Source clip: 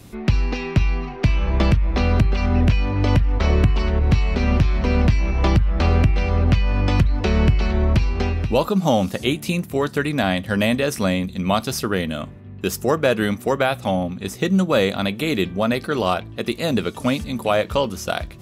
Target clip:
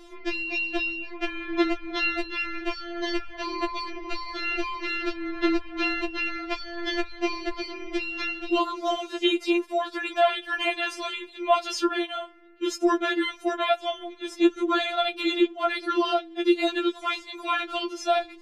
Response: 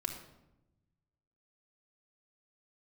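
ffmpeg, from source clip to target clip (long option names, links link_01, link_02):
-af "lowpass=4800,afftfilt=real='re*4*eq(mod(b,16),0)':imag='im*4*eq(mod(b,16),0)':win_size=2048:overlap=0.75,volume=1.5dB"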